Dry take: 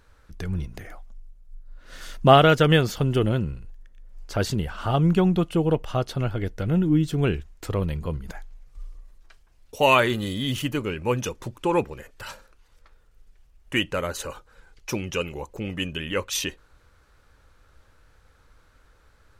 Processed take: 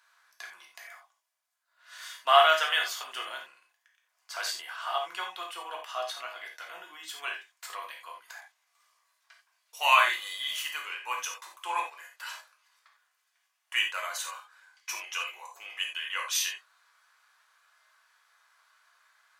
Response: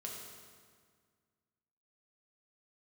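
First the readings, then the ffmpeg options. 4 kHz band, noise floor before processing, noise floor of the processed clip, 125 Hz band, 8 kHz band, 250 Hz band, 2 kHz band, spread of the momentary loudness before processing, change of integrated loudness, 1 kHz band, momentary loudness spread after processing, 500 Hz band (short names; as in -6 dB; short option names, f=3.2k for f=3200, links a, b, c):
-0.5 dB, -59 dBFS, -77 dBFS, under -40 dB, 0.0 dB, under -35 dB, -0.5 dB, 18 LU, -5.5 dB, -2.5 dB, 23 LU, -12.0 dB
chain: -filter_complex "[0:a]highpass=f=960:w=0.5412,highpass=f=960:w=1.3066[a];[1:a]atrim=start_sample=2205,afade=t=out:st=0.2:d=0.01,atrim=end_sample=9261,asetrate=70560,aresample=44100[b];[a][b]afir=irnorm=-1:irlink=0,volume=6.5dB"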